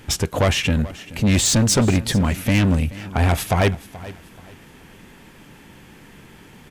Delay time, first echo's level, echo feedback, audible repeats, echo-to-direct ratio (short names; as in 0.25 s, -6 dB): 0.429 s, -18.0 dB, 31%, 2, -17.5 dB